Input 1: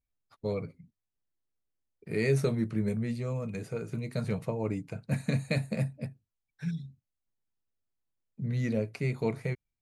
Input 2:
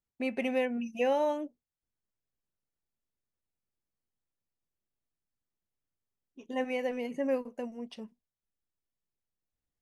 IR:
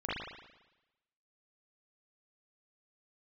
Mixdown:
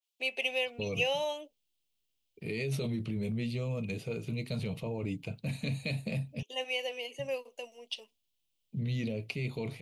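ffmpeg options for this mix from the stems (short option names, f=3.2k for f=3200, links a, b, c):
-filter_complex "[0:a]equalizer=f=7.7k:w=0.57:g=-14,alimiter=level_in=3.5dB:limit=-24dB:level=0:latency=1:release=20,volume=-3.5dB,adelay=350,volume=0.5dB,asplit=3[a][b][c];[a]atrim=end=6.43,asetpts=PTS-STARTPTS,afade=t=out:st=6.426:d=0.004:c=hsin[d];[b]atrim=start=6.43:end=7.19,asetpts=PTS-STARTPTS,volume=0[e];[c]atrim=start=7.19,asetpts=PTS-STARTPTS,afade=t=in:d=0.004:c=hsin[f];[d][e][f]concat=n=3:v=0:a=1[g];[1:a]highpass=f=410:w=0.5412,highpass=f=410:w=1.3066,adynamicequalizer=threshold=0.00355:dfrequency=2900:dqfactor=0.7:tfrequency=2900:tqfactor=0.7:attack=5:release=100:ratio=0.375:range=2:mode=cutabove:tftype=highshelf,volume=-3.5dB[h];[g][h]amix=inputs=2:normalize=0,highshelf=f=2.2k:t=q:w=3:g=10.5"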